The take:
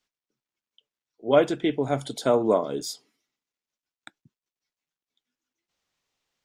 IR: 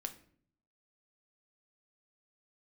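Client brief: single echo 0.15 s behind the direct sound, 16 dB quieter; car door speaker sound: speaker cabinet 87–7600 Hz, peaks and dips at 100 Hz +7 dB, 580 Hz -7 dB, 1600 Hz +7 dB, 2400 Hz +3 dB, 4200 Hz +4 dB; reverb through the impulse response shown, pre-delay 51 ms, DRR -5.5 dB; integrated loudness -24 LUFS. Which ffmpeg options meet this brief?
-filter_complex "[0:a]aecho=1:1:150:0.158,asplit=2[a][b];[1:a]atrim=start_sample=2205,adelay=51[c];[b][c]afir=irnorm=-1:irlink=0,volume=7.5dB[d];[a][d]amix=inputs=2:normalize=0,highpass=87,equalizer=f=100:t=q:w=4:g=7,equalizer=f=580:t=q:w=4:g=-7,equalizer=f=1.6k:t=q:w=4:g=7,equalizer=f=2.4k:t=q:w=4:g=3,equalizer=f=4.2k:t=q:w=4:g=4,lowpass=f=7.6k:w=0.5412,lowpass=f=7.6k:w=1.3066,volume=-4.5dB"

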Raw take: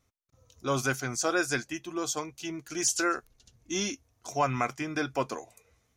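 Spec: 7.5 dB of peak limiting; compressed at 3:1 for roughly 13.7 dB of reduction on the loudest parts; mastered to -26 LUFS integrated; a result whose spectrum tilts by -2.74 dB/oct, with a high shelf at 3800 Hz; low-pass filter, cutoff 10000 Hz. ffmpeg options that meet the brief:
-af "lowpass=10k,highshelf=f=3.8k:g=8,acompressor=threshold=-36dB:ratio=3,volume=13.5dB,alimiter=limit=-14.5dB:level=0:latency=1"

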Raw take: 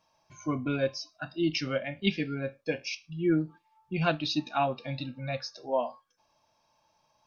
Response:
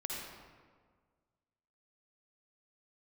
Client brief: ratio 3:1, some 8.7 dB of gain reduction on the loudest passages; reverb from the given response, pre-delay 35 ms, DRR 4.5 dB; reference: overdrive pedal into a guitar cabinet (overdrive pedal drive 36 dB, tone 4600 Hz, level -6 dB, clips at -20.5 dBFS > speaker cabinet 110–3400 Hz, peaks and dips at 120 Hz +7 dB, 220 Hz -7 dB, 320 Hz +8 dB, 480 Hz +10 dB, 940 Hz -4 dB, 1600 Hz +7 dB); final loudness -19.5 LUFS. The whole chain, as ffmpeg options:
-filter_complex "[0:a]acompressor=threshold=-33dB:ratio=3,asplit=2[a][b];[1:a]atrim=start_sample=2205,adelay=35[c];[b][c]afir=irnorm=-1:irlink=0,volume=-6dB[d];[a][d]amix=inputs=2:normalize=0,asplit=2[e][f];[f]highpass=f=720:p=1,volume=36dB,asoftclip=type=tanh:threshold=-20.5dB[g];[e][g]amix=inputs=2:normalize=0,lowpass=f=4.6k:p=1,volume=-6dB,highpass=110,equalizer=f=120:t=q:w=4:g=7,equalizer=f=220:t=q:w=4:g=-7,equalizer=f=320:t=q:w=4:g=8,equalizer=f=480:t=q:w=4:g=10,equalizer=f=940:t=q:w=4:g=-4,equalizer=f=1.6k:t=q:w=4:g=7,lowpass=f=3.4k:w=0.5412,lowpass=f=3.4k:w=1.3066,volume=4.5dB"

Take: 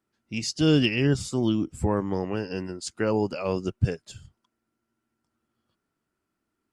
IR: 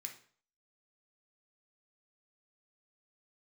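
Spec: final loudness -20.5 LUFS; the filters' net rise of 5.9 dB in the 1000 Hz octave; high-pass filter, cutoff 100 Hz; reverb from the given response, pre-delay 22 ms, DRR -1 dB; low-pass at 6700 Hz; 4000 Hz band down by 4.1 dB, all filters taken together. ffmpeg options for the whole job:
-filter_complex "[0:a]highpass=100,lowpass=6.7k,equalizer=f=1k:t=o:g=7.5,equalizer=f=4k:t=o:g=-7,asplit=2[a][b];[1:a]atrim=start_sample=2205,adelay=22[c];[b][c]afir=irnorm=-1:irlink=0,volume=5dB[d];[a][d]amix=inputs=2:normalize=0,volume=3.5dB"

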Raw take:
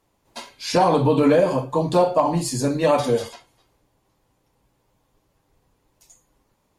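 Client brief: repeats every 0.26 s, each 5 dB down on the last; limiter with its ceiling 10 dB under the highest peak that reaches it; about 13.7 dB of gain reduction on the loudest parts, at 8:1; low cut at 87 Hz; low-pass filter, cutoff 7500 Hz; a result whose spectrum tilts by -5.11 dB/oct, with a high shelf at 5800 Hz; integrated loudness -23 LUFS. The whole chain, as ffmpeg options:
-af "highpass=87,lowpass=7.5k,highshelf=f=5.8k:g=-5,acompressor=threshold=-27dB:ratio=8,alimiter=level_in=2dB:limit=-24dB:level=0:latency=1,volume=-2dB,aecho=1:1:260|520|780|1040|1300|1560|1820:0.562|0.315|0.176|0.0988|0.0553|0.031|0.0173,volume=11dB"

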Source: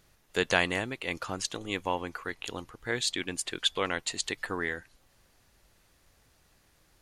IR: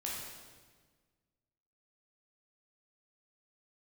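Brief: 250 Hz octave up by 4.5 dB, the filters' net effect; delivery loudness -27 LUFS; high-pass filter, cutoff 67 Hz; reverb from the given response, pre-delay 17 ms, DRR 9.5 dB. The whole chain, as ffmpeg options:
-filter_complex "[0:a]highpass=67,equalizer=f=250:t=o:g=6,asplit=2[a][b];[1:a]atrim=start_sample=2205,adelay=17[c];[b][c]afir=irnorm=-1:irlink=0,volume=-11dB[d];[a][d]amix=inputs=2:normalize=0,volume=3.5dB"

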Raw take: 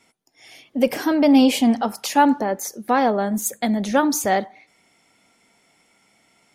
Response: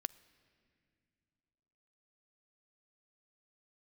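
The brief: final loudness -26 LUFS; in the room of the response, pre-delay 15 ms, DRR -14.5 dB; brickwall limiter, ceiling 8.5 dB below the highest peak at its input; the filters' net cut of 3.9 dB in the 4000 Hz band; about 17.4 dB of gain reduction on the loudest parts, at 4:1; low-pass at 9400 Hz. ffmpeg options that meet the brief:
-filter_complex "[0:a]lowpass=9.4k,equalizer=f=4k:t=o:g=-5.5,acompressor=threshold=-33dB:ratio=4,alimiter=level_in=3.5dB:limit=-24dB:level=0:latency=1,volume=-3.5dB,asplit=2[a][b];[1:a]atrim=start_sample=2205,adelay=15[c];[b][c]afir=irnorm=-1:irlink=0,volume=16dB[d];[a][d]amix=inputs=2:normalize=0,volume=-4dB"

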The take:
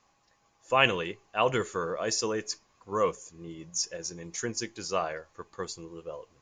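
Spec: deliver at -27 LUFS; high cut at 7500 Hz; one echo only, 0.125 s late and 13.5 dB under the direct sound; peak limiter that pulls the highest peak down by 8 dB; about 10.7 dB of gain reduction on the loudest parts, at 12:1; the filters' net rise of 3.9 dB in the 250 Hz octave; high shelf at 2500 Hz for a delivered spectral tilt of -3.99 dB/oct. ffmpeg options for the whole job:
-af "lowpass=7.5k,equalizer=f=250:t=o:g=5.5,highshelf=f=2.5k:g=-6.5,acompressor=threshold=-30dB:ratio=12,alimiter=level_in=2.5dB:limit=-24dB:level=0:latency=1,volume=-2.5dB,aecho=1:1:125:0.211,volume=12dB"

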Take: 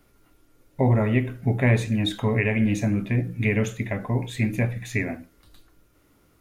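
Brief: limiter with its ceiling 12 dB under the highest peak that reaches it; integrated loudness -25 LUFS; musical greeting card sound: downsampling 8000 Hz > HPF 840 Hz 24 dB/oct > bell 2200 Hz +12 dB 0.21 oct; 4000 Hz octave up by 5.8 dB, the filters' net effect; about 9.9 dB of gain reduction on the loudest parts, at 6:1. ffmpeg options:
-af "equalizer=f=4k:t=o:g=6,acompressor=threshold=-26dB:ratio=6,alimiter=level_in=3.5dB:limit=-24dB:level=0:latency=1,volume=-3.5dB,aresample=8000,aresample=44100,highpass=f=840:w=0.5412,highpass=f=840:w=1.3066,equalizer=f=2.2k:t=o:w=0.21:g=12,volume=13.5dB"

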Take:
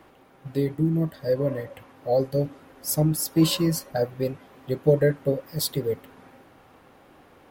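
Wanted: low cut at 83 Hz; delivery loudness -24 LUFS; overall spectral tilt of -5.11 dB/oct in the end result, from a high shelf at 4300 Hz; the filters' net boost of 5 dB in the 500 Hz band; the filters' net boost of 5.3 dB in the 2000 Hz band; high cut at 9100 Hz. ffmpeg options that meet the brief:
-af "highpass=83,lowpass=9.1k,equalizer=f=500:t=o:g=5.5,equalizer=f=2k:t=o:g=5,highshelf=f=4.3k:g=7.5,volume=-2dB"

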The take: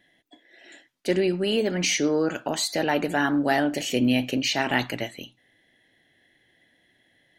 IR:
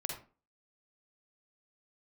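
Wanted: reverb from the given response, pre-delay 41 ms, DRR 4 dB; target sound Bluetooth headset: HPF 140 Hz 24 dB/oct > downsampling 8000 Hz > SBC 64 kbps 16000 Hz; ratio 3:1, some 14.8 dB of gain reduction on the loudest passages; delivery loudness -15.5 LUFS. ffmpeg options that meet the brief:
-filter_complex "[0:a]acompressor=threshold=-39dB:ratio=3,asplit=2[a][b];[1:a]atrim=start_sample=2205,adelay=41[c];[b][c]afir=irnorm=-1:irlink=0,volume=-5dB[d];[a][d]amix=inputs=2:normalize=0,highpass=f=140:w=0.5412,highpass=f=140:w=1.3066,aresample=8000,aresample=44100,volume=22dB" -ar 16000 -c:a sbc -b:a 64k

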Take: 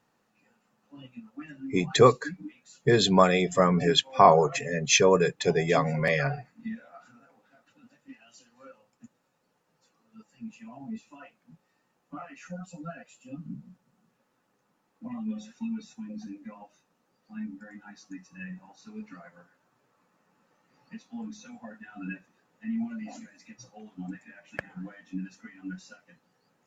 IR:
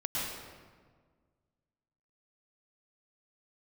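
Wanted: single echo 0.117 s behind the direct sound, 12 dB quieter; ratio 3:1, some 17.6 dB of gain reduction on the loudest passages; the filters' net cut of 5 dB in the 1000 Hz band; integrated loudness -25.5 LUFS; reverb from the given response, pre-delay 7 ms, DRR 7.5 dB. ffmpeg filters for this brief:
-filter_complex "[0:a]equalizer=f=1k:t=o:g=-6.5,acompressor=threshold=-39dB:ratio=3,aecho=1:1:117:0.251,asplit=2[a][b];[1:a]atrim=start_sample=2205,adelay=7[c];[b][c]afir=irnorm=-1:irlink=0,volume=-13.5dB[d];[a][d]amix=inputs=2:normalize=0,volume=16dB"

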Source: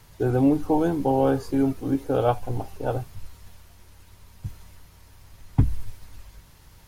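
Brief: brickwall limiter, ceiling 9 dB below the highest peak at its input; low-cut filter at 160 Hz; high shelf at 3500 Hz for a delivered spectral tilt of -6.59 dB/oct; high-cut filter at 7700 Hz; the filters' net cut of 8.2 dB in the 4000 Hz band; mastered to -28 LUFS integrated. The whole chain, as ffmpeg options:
-af "highpass=160,lowpass=7.7k,highshelf=f=3.5k:g=-8,equalizer=f=4k:t=o:g=-5.5,volume=1dB,alimiter=limit=-17dB:level=0:latency=1"

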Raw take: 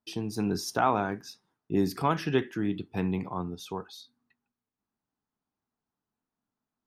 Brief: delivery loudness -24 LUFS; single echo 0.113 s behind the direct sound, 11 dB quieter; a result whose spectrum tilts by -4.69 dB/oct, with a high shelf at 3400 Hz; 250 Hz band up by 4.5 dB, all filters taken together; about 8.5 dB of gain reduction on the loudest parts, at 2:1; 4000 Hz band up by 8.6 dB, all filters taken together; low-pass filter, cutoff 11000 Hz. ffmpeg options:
-af "lowpass=11k,equalizer=f=250:t=o:g=6,highshelf=f=3.4k:g=5,equalizer=f=4k:t=o:g=7.5,acompressor=threshold=-32dB:ratio=2,aecho=1:1:113:0.282,volume=9dB"

